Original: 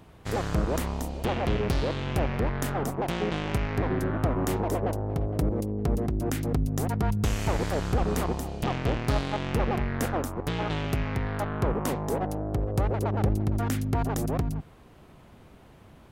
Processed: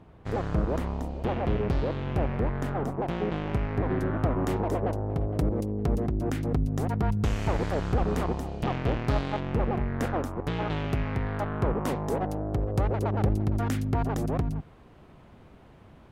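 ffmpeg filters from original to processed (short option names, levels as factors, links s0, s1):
-af "asetnsamples=n=441:p=0,asendcmd='3.89 lowpass f 2900;5.28 lowpass f 5600;6.08 lowpass f 2700;9.4 lowpass f 1100;10 lowpass f 2700;11.86 lowpass f 5300;13.89 lowpass f 3200',lowpass=f=1300:p=1"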